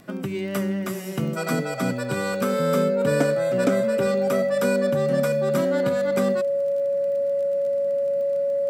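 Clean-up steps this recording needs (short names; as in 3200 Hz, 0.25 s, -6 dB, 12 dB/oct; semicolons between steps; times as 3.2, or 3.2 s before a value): de-click; notch 560 Hz, Q 30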